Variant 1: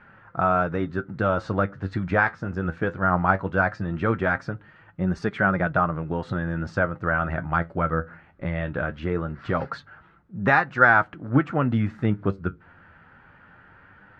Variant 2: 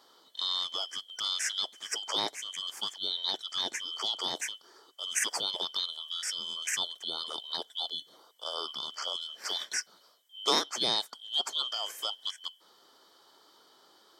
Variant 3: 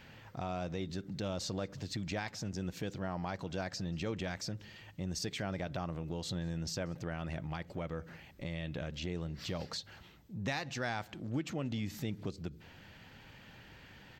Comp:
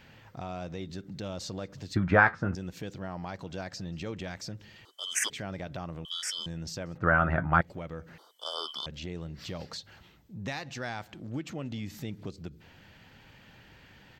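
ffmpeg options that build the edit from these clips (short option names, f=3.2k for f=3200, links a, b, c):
-filter_complex "[0:a]asplit=2[a][b];[1:a]asplit=3[c][d][e];[2:a]asplit=6[f][g][h][i][j][k];[f]atrim=end=1.962[l];[a]atrim=start=1.958:end=2.552[m];[g]atrim=start=2.548:end=4.852[n];[c]atrim=start=4.848:end=5.302[o];[h]atrim=start=5.298:end=6.052[p];[d]atrim=start=6.048:end=6.462[q];[i]atrim=start=6.458:end=6.982[r];[b]atrim=start=6.978:end=7.612[s];[j]atrim=start=7.608:end=8.182[t];[e]atrim=start=8.178:end=8.862[u];[k]atrim=start=8.858[v];[l][m]acrossfade=d=0.004:c1=hsin:c2=hsin[w];[w][n]acrossfade=d=0.004:c1=hsin:c2=hsin[x];[x][o]acrossfade=d=0.004:c1=hsin:c2=hsin[y];[y][p]acrossfade=d=0.004:c1=hsin:c2=hsin[z];[z][q]acrossfade=d=0.004:c1=hsin:c2=hsin[aa];[aa][r]acrossfade=d=0.004:c1=hsin:c2=hsin[ab];[ab][s]acrossfade=d=0.004:c1=hsin:c2=hsin[ac];[ac][t]acrossfade=d=0.004:c1=hsin:c2=hsin[ad];[ad][u]acrossfade=d=0.004:c1=hsin:c2=hsin[ae];[ae][v]acrossfade=d=0.004:c1=hsin:c2=hsin"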